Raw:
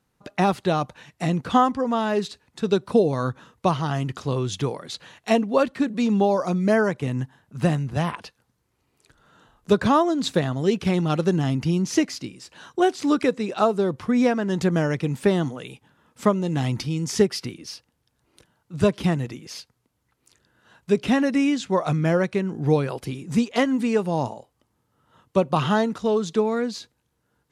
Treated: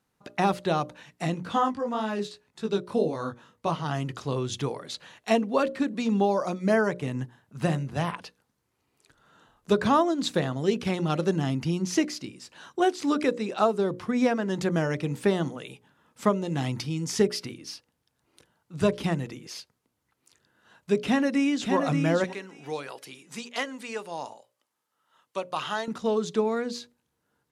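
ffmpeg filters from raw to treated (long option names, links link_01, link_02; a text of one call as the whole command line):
ffmpeg -i in.wav -filter_complex "[0:a]asplit=3[link_01][link_02][link_03];[link_01]afade=type=out:start_time=1.33:duration=0.02[link_04];[link_02]flanger=delay=18:depth=3.5:speed=1.9,afade=type=in:start_time=1.33:duration=0.02,afade=type=out:start_time=3.84:duration=0.02[link_05];[link_03]afade=type=in:start_time=3.84:duration=0.02[link_06];[link_04][link_05][link_06]amix=inputs=3:normalize=0,asplit=2[link_07][link_08];[link_08]afade=type=in:start_time=20.98:duration=0.01,afade=type=out:start_time=21.74:duration=0.01,aecho=0:1:580|1160|1740:0.562341|0.112468|0.0224937[link_09];[link_07][link_09]amix=inputs=2:normalize=0,asettb=1/sr,asplit=3[link_10][link_11][link_12];[link_10]atrim=end=22.244[link_13];[link_11]atrim=start=22.24:end=25.88,asetpts=PTS-STARTPTS,afade=type=in:duration=0.004:curve=qsin,afade=type=out:start_time=3.636:duration=0.004:curve=qsin,highpass=frequency=1300:poles=1[link_14];[link_12]atrim=start=25.876[link_15];[link_13][link_14]acrossfade=duration=0.004:curve1=hsin:curve2=qsin[link_16];[link_16][link_15]acrossfade=duration=0.004:curve1=qsin:curve2=hsin,lowshelf=frequency=94:gain=-7.5,bandreject=frequency=60:width_type=h:width=6,bandreject=frequency=120:width_type=h:width=6,bandreject=frequency=180:width_type=h:width=6,bandreject=frequency=240:width_type=h:width=6,bandreject=frequency=300:width_type=h:width=6,bandreject=frequency=360:width_type=h:width=6,bandreject=frequency=420:width_type=h:width=6,bandreject=frequency=480:width_type=h:width=6,bandreject=frequency=540:width_type=h:width=6,bandreject=frequency=600:width_type=h:width=6,volume=-2.5dB" out.wav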